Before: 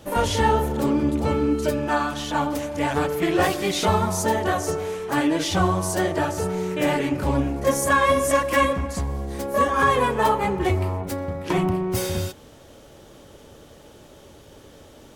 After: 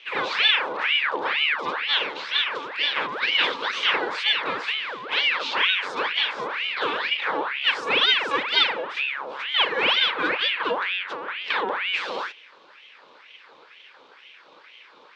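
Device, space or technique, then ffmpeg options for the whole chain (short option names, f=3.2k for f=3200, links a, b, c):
voice changer toy: -af "aeval=exprs='val(0)*sin(2*PI*1600*n/s+1600*0.65/2.1*sin(2*PI*2.1*n/s))':c=same,highpass=440,equalizer=f=480:t=q:w=4:g=4,equalizer=f=700:t=q:w=4:g=-10,equalizer=f=1.3k:t=q:w=4:g=-3,equalizer=f=1.9k:t=q:w=4:g=-4,equalizer=f=3.5k:t=q:w=4:g=5,lowpass=f=4.2k:w=0.5412,lowpass=f=4.2k:w=1.3066,volume=2dB"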